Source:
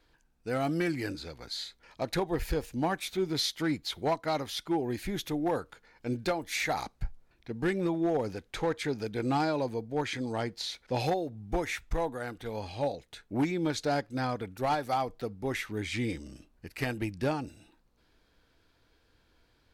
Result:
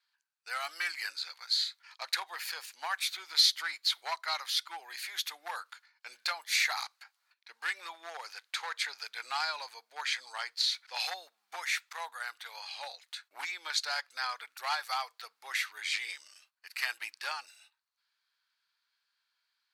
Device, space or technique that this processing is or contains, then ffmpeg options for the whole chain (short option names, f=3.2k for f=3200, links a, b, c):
headphones lying on a table: -af "agate=range=-13dB:threshold=-57dB:ratio=16:detection=peak,highpass=f=1.1k:w=0.5412,highpass=f=1.1k:w=1.3066,equalizer=f=4.4k:t=o:w=0.29:g=6.5,volume=3.5dB"